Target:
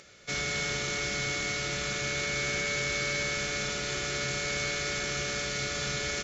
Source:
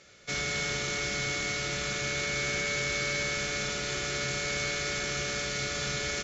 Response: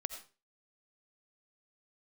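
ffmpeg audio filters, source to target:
-af "acompressor=mode=upward:threshold=-51dB:ratio=2.5"

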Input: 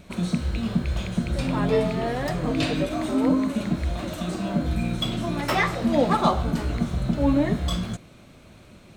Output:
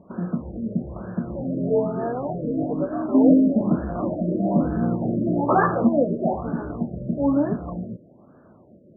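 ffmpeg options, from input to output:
ffmpeg -i in.wav -filter_complex "[0:a]aemphasis=mode=reproduction:type=bsi,asettb=1/sr,asplit=3[link_01][link_02][link_03];[link_01]atrim=end=3.144[link_04];[link_02]atrim=start=3.14:end=5.89,asetpts=PTS-STARTPTS,afade=type=in:duration=0.004:curve=qsin,afade=type=out:start_time=2.746:duration=0.004:curve=qsin,acontrast=77[link_05];[link_03]atrim=start=5.886[link_06];[link_04][link_05]acrossfade=duration=0.004:curve1=hsin:curve2=qsin[link_07];[link_07][link_06]acrossfade=duration=0.004:curve1=qsin:curve2=hsin,highpass=280,lowpass=4000,afftfilt=real='re*lt(b*sr/1024,630*pow(1800/630,0.5+0.5*sin(2*PI*1.1*pts/sr)))':imag='im*lt(b*sr/1024,630*pow(1800/630,0.5+0.5*sin(2*PI*1.1*pts/sr)))':win_size=1024:overlap=0.75" out.wav

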